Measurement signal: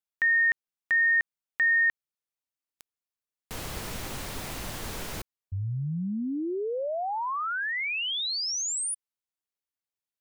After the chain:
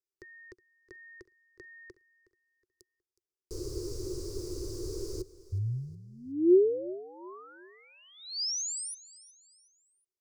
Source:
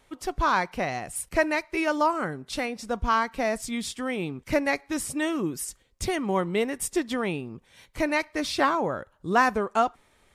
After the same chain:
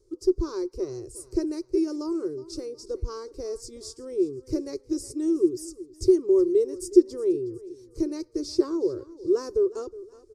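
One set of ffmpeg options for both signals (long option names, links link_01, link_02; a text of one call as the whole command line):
ffmpeg -i in.wav -filter_complex "[0:a]firequalizer=gain_entry='entry(120,0);entry(190,-30);entry(360,14);entry(710,-28);entry(1100,-18);entry(1800,-30);entry(3300,-27);entry(4800,-1);entry(13000,-15)':delay=0.05:min_phase=1,asplit=2[link_01][link_02];[link_02]aecho=0:1:367|734|1101:0.119|0.0452|0.0172[link_03];[link_01][link_03]amix=inputs=2:normalize=0" out.wav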